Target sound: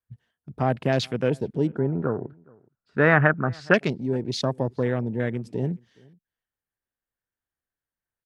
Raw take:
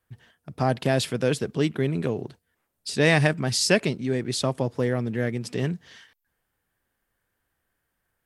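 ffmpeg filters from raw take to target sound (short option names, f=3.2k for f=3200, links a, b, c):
-filter_complex "[0:a]afwtdn=0.02,asettb=1/sr,asplit=3[a][b][c];[a]atrim=end=1.674[d];[b]atrim=start=1.67:end=3.74,asetpts=PTS-STARTPTS,afade=t=in:d=0.004:c=qsin,afade=t=out:st=2.066:d=0.004:c=qsin,lowpass=f=1.4k:t=q:w=6.2[e];[c]atrim=start=3.736[f];[d][e]acrossfade=d=0.004:c1=hsin:c2=qsin[g];[g][f]acrossfade=d=0.004:c1=qsin:c2=hsin,asplit=2[h][i];[i]adelay=419.8,volume=-27dB,highshelf=f=4k:g=-9.45[j];[h][j]amix=inputs=2:normalize=0"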